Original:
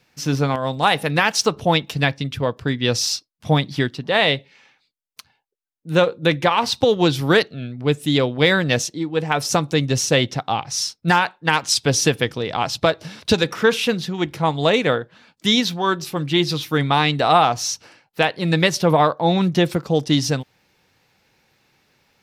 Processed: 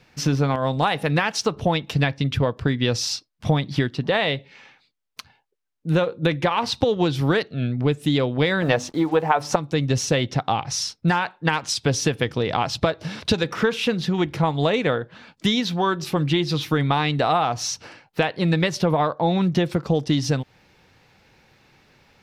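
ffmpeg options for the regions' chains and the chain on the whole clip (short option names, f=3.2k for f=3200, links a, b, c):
-filter_complex "[0:a]asettb=1/sr,asplit=3[a][b][c];[a]atrim=end=8.624[d];[b]atrim=start=8.62:end=9.56,asetpts=PTS-STARTPTS,afade=t=in:d=0.004:c=qsin,afade=t=out:st=0.936:d=0.004:c=qsin,equalizer=f=870:w=0.64:g=14,bandreject=f=50:t=h:w=6,bandreject=f=100:t=h:w=6,bandreject=f=150:t=h:w=6,bandreject=f=200:t=h:w=6,bandreject=f=250:t=h:w=6,bandreject=f=300:t=h:w=6,acrusher=bits=6:mix=0:aa=0.5[e];[c]atrim=start=9.556[f];[d][e]acrossfade=d=0.004:c1=hsin:c2=qsin[g];[g][f]acrossfade=d=0.004:c1=qsin:c2=hsin,acompressor=threshold=-25dB:ratio=4,lowpass=f=4k:p=1,lowshelf=f=79:g=7,volume=6dB"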